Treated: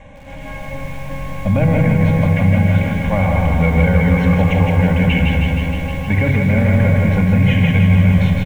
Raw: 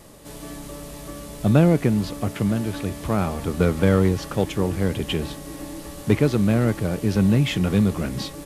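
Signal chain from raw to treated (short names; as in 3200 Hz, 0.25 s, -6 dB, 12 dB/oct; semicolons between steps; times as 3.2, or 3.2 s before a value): LPF 6400 Hz 24 dB/oct; high shelf 2800 Hz -8.5 dB; fixed phaser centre 1400 Hz, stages 6; small resonant body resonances 1600/2300 Hz, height 13 dB, ringing for 20 ms; pitch shift -1 st; feedback echo 0.168 s, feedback 46%, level -5.5 dB; shoebox room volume 3200 m³, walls furnished, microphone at 2.3 m; maximiser +14 dB; lo-fi delay 0.156 s, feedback 80%, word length 6-bit, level -7 dB; gain -6 dB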